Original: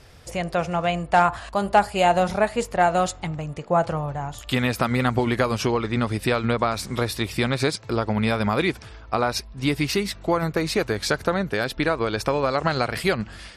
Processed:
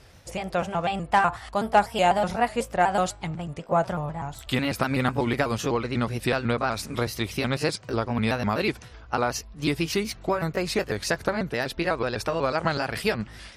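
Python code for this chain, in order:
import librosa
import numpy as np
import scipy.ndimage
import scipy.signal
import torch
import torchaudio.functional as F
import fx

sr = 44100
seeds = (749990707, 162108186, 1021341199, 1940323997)

y = fx.pitch_trill(x, sr, semitones=2.0, every_ms=124)
y = fx.cheby_harmonics(y, sr, harmonics=(3, 4), levels_db=(-29, -44), full_scale_db=-6.0)
y = y * 10.0 ** (-1.5 / 20.0)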